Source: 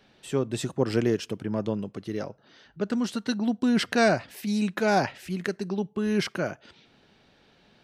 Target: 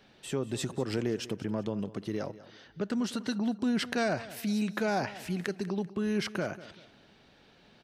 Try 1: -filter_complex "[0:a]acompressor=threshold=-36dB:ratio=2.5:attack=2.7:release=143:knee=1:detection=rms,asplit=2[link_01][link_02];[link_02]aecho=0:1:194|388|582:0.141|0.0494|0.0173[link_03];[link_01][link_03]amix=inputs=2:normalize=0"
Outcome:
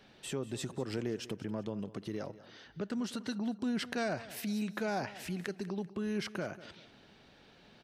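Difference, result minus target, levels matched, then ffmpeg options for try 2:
downward compressor: peak gain reduction +5 dB
-filter_complex "[0:a]acompressor=threshold=-27.5dB:ratio=2.5:attack=2.7:release=143:knee=1:detection=rms,asplit=2[link_01][link_02];[link_02]aecho=0:1:194|388|582:0.141|0.0494|0.0173[link_03];[link_01][link_03]amix=inputs=2:normalize=0"

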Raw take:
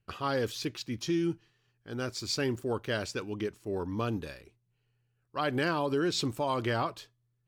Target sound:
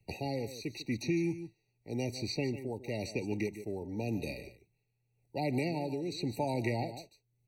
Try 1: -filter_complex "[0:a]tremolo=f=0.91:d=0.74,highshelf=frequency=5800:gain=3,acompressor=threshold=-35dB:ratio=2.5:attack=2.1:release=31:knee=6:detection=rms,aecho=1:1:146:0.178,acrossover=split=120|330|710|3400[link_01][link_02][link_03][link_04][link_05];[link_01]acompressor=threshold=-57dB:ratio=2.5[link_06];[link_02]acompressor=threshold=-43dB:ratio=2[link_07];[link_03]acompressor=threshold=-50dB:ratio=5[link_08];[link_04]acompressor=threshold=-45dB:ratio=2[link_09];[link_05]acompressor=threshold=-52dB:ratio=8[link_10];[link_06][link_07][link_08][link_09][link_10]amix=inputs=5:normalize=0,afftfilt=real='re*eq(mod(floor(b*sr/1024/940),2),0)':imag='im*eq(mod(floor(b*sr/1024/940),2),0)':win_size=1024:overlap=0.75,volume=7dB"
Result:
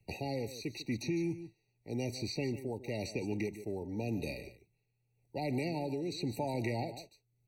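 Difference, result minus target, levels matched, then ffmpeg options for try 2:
downward compressor: peak gain reduction +7 dB
-filter_complex "[0:a]tremolo=f=0.91:d=0.74,highshelf=frequency=5800:gain=3,aecho=1:1:146:0.178,acrossover=split=120|330|710|3400[link_01][link_02][link_03][link_04][link_05];[link_01]acompressor=threshold=-57dB:ratio=2.5[link_06];[link_02]acompressor=threshold=-43dB:ratio=2[link_07];[link_03]acompressor=threshold=-50dB:ratio=5[link_08];[link_04]acompressor=threshold=-45dB:ratio=2[link_09];[link_05]acompressor=threshold=-52dB:ratio=8[link_10];[link_06][link_07][link_08][link_09][link_10]amix=inputs=5:normalize=0,afftfilt=real='re*eq(mod(floor(b*sr/1024/940),2),0)':imag='im*eq(mod(floor(b*sr/1024/940),2),0)':win_size=1024:overlap=0.75,volume=7dB"

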